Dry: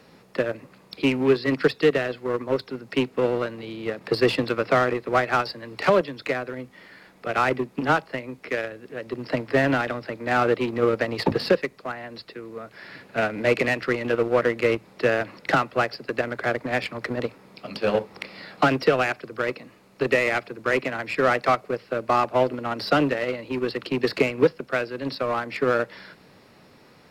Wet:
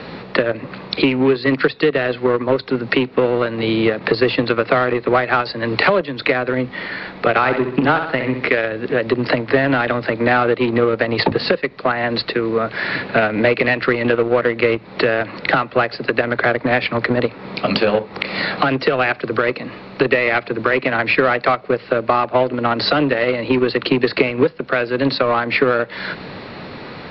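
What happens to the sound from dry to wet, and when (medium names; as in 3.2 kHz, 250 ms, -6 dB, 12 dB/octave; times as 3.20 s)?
7.30–8.46 s: flutter echo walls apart 11.1 m, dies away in 0.44 s
whole clip: elliptic low-pass 4.3 kHz, stop band 60 dB; compression 6:1, threshold -34 dBFS; loudness maximiser +22 dB; trim -1 dB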